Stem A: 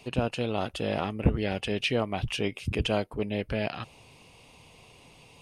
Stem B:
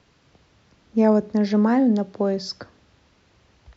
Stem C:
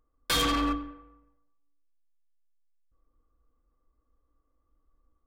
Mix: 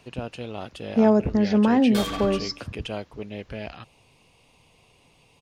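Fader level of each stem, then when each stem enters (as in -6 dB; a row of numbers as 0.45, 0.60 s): -5.0, -0.5, -5.5 dB; 0.00, 0.00, 1.65 s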